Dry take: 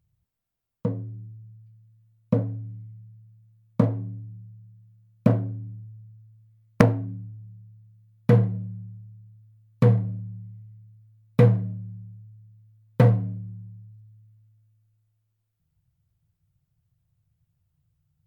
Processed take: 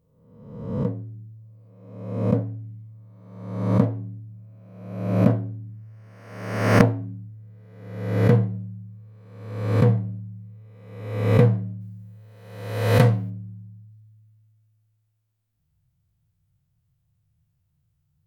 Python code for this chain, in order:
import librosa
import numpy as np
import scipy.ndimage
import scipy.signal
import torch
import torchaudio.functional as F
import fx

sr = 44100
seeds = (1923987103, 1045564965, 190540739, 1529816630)

y = fx.spec_swells(x, sr, rise_s=1.05)
y = fx.high_shelf(y, sr, hz=fx.line((11.8, 2600.0), (13.29, 2100.0)), db=12.0, at=(11.8, 13.29), fade=0.02)
y = F.gain(torch.from_numpy(y), -1.0).numpy()